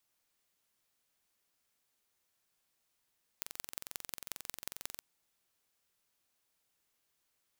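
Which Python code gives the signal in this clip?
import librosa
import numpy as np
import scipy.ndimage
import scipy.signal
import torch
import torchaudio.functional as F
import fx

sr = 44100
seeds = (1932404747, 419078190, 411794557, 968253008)

y = fx.impulse_train(sr, length_s=1.57, per_s=22.3, accent_every=4, level_db=-10.0)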